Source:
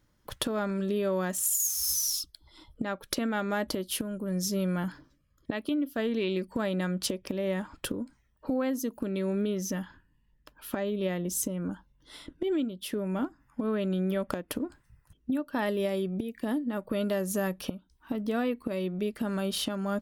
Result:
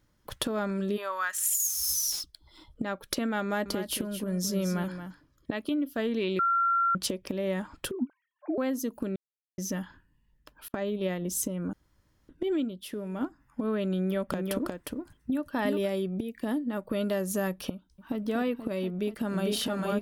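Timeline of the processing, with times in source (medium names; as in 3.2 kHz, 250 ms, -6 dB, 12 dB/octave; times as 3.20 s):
0.96–1.54 s: resonant high-pass 850 Hz -> 2.1 kHz, resonance Q 3.1
2.12–2.91 s: median filter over 3 samples
3.43–5.66 s: delay 225 ms -9.5 dB
6.39–6.95 s: bleep 1.37 kHz -22 dBFS
7.91–8.58 s: formants replaced by sine waves
9.16–9.58 s: mute
10.68–11.22 s: gate -33 dBFS, range -33 dB
11.73–12.29 s: room tone
12.81–13.21 s: feedback comb 210 Hz, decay 1.6 s, mix 40%
13.96–15.89 s: delay 358 ms -3.5 dB
17.74–18.18 s: echo throw 240 ms, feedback 80%, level -8 dB
18.88–19.47 s: echo throw 450 ms, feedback 60%, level -0.5 dB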